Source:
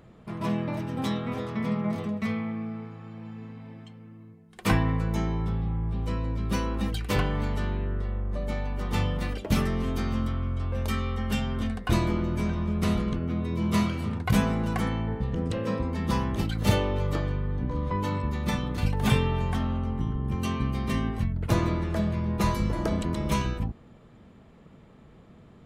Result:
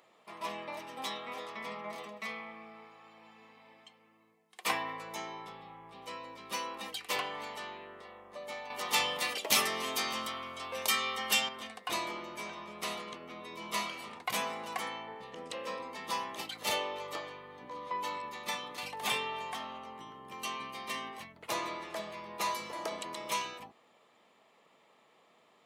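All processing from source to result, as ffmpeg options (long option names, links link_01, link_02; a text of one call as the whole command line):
ffmpeg -i in.wav -filter_complex "[0:a]asettb=1/sr,asplit=3[link_01][link_02][link_03];[link_01]atrim=end=8.704[link_04];[link_02]atrim=start=8.7:end=11.49,asetpts=PTS-STARTPTS,afade=type=in:duration=0.004:curve=qsin,afade=type=out:start_time=2.786:duration=0.004:curve=qsin,highpass=50,highshelf=frequency=3300:gain=7.5,acontrast=36[link_05];[link_03]atrim=start=11.486[link_06];[link_04][link_05]acrossfade=duration=0.004:curve1=hsin:curve2=qsin[link_07];[link_07][link_06]acrossfade=duration=0.004:curve1=qsin:curve2=hsin,highpass=820,equalizer=frequency=1500:width=4.1:gain=-10" out.wav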